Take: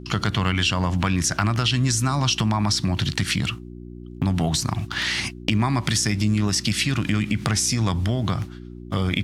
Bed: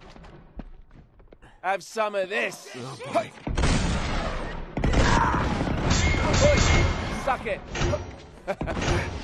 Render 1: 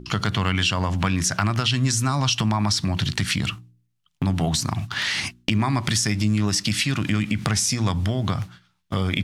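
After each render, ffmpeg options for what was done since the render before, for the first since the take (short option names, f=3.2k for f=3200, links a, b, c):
-af "bandreject=f=60:t=h:w=4,bandreject=f=120:t=h:w=4,bandreject=f=180:t=h:w=4,bandreject=f=240:t=h:w=4,bandreject=f=300:t=h:w=4,bandreject=f=360:t=h:w=4"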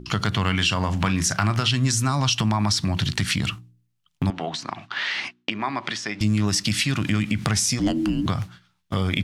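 -filter_complex "[0:a]asettb=1/sr,asplit=3[a][b][c];[a]atrim=end=0.474[d];[b]atrim=start=0.47:end=1.72,asetpts=PTS-STARTPTS,afade=t=in:d=0.004:c=qsin,afade=t=out:st=1.246:d=0.004:c=qsin,asplit=2[e][f];[f]adelay=37,volume=-13dB[g];[e][g]amix=inputs=2:normalize=0,atrim=end_sample=55125[h];[c]atrim=start=1.716[i];[d][h]acrossfade=d=0.004:c1=hsin:c2=qsin[j];[j][i]acrossfade=d=0.004:c1=qsin:c2=hsin,asettb=1/sr,asplit=3[k][l][m];[k]atrim=end=4.304[n];[l]atrim=start=4.3:end=6.21,asetpts=PTS-STARTPTS,afade=t=in:d=0.004:c=qsin,afade=t=out:st=1.906:d=0.004:c=qsin,highpass=360,lowpass=3.4k[o];[m]atrim=start=6.206[p];[n][o]acrossfade=d=0.004:c1=hsin:c2=qsin[q];[q][p]acrossfade=d=0.004:c1=qsin:c2=hsin,asettb=1/sr,asplit=3[r][s][t];[r]atrim=end=7.794[u];[s]atrim=start=7.79:end=8.26,asetpts=PTS-STARTPTS,afade=t=in:d=0.004:c=qsin,afade=t=out:st=0.466:d=0.004:c=qsin,afreqshift=-410[v];[t]atrim=start=8.256[w];[u][v]acrossfade=d=0.004:c1=hsin:c2=qsin[x];[x][w]acrossfade=d=0.004:c1=qsin:c2=hsin"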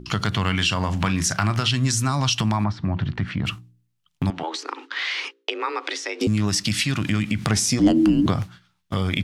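-filter_complex "[0:a]asettb=1/sr,asplit=3[a][b][c];[a]atrim=end=2.644[d];[b]atrim=start=2.64:end=3.46,asetpts=PTS-STARTPTS,afade=t=in:d=0.004:c=qsin,afade=t=out:st=0.816:d=0.004:c=qsin,lowpass=1.5k[e];[c]atrim=start=3.456[f];[d][e]acrossfade=d=0.004:c1=hsin:c2=qsin[g];[g][f]acrossfade=d=0.004:c1=qsin:c2=hsin,asettb=1/sr,asplit=3[h][i][j];[h]atrim=end=4.434[k];[i]atrim=start=4.43:end=6.27,asetpts=PTS-STARTPTS,afade=t=in:d=0.004:c=qsin,afade=t=out:st=1.836:d=0.004:c=qsin,afreqshift=160[l];[j]atrim=start=6.266[m];[k][l]acrossfade=d=0.004:c1=hsin:c2=qsin[n];[n][m]acrossfade=d=0.004:c1=qsin:c2=hsin,asettb=1/sr,asplit=3[o][p][q];[o]atrim=end=7.504[r];[p]atrim=start=7.5:end=8.43,asetpts=PTS-STARTPTS,afade=t=in:d=0.004:c=qsin,afade=t=out:st=0.926:d=0.004:c=qsin,equalizer=f=370:t=o:w=1.9:g=7.5[s];[q]atrim=start=8.426[t];[r][s]acrossfade=d=0.004:c1=hsin:c2=qsin[u];[u][t]acrossfade=d=0.004:c1=qsin:c2=hsin"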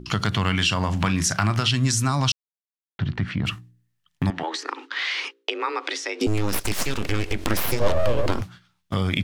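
-filter_complex "[0:a]asettb=1/sr,asplit=3[a][b][c];[a]atrim=end=3.514[d];[b]atrim=start=3.51:end=4.7,asetpts=PTS-STARTPTS,afade=t=in:d=0.004:c=qsin,afade=t=out:st=1.186:d=0.004:c=qsin,equalizer=f=1.8k:w=5.5:g=11.5[e];[c]atrim=start=4.696[f];[d][e]acrossfade=d=0.004:c1=hsin:c2=qsin[g];[g][f]acrossfade=d=0.004:c1=qsin:c2=hsin,asplit=3[h][i][j];[h]afade=t=out:st=6.26:d=0.02[k];[i]aeval=exprs='abs(val(0))':c=same,afade=t=in:st=6.26:d=0.02,afade=t=out:st=8.4:d=0.02[l];[j]afade=t=in:st=8.4:d=0.02[m];[k][l][m]amix=inputs=3:normalize=0,asplit=3[n][o][p];[n]atrim=end=2.32,asetpts=PTS-STARTPTS,afade=t=out:st=2.316:d=0.004:c=hsin[q];[o]atrim=start=2.32:end=2.99,asetpts=PTS-STARTPTS,volume=0[r];[p]atrim=start=2.99,asetpts=PTS-STARTPTS,afade=t=in:d=0.004:c=hsin[s];[q][r][s]concat=n=3:v=0:a=1"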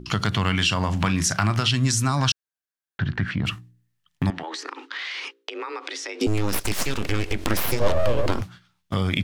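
-filter_complex "[0:a]asettb=1/sr,asplit=3[a][b][c];[a]atrim=end=2.174[d];[b]atrim=start=2.17:end=3.31,asetpts=PTS-STARTPTS,afade=t=in:d=0.004:c=qsin,afade=t=out:st=1.136:d=0.004:c=qsin,equalizer=f=1.6k:t=o:w=0.27:g=12.5[e];[c]atrim=start=3.306[f];[d][e]acrossfade=d=0.004:c1=hsin:c2=qsin[g];[g][f]acrossfade=d=0.004:c1=qsin:c2=hsin,asettb=1/sr,asplit=3[h][i][j];[h]atrim=end=4.304[k];[i]atrim=start=4.3:end=6.15,asetpts=PTS-STARTPTS,afade=t=in:d=0.004:c=qsin,afade=t=out:st=1.846:d=0.004:c=qsin,acompressor=threshold=-28dB:ratio=6:attack=3.2:release=140:knee=1:detection=peak[l];[j]atrim=start=6.146[m];[k][l]acrossfade=d=0.004:c1=hsin:c2=qsin[n];[n][m]acrossfade=d=0.004:c1=qsin:c2=hsin"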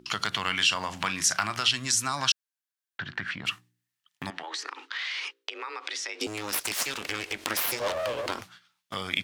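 -af "highpass=f=1.2k:p=1"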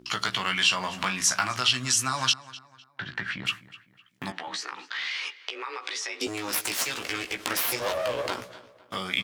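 -filter_complex "[0:a]asplit=2[a][b];[b]adelay=16,volume=-5dB[c];[a][c]amix=inputs=2:normalize=0,asplit=2[d][e];[e]adelay=253,lowpass=f=3.7k:p=1,volume=-17dB,asplit=2[f][g];[g]adelay=253,lowpass=f=3.7k:p=1,volume=0.39,asplit=2[h][i];[i]adelay=253,lowpass=f=3.7k:p=1,volume=0.39[j];[d][f][h][j]amix=inputs=4:normalize=0"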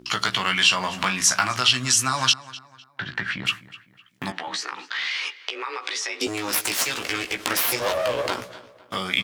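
-af "volume=4.5dB"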